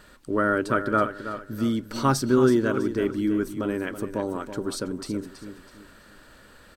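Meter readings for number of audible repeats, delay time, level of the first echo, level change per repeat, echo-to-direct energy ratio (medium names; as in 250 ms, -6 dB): 3, 326 ms, -11.0 dB, -9.5 dB, -10.5 dB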